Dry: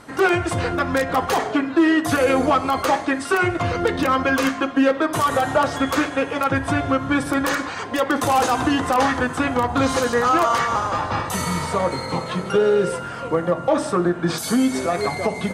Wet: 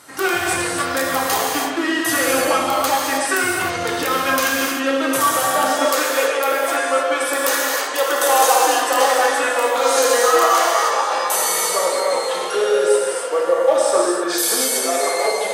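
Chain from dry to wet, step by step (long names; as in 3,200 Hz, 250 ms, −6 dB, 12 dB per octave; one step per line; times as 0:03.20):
RIAA equalisation recording
reverb whose tail is shaped and stops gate 340 ms flat, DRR −3.5 dB
high-pass filter sweep 85 Hz → 470 Hz, 0:05.35–0:05.97
level −4 dB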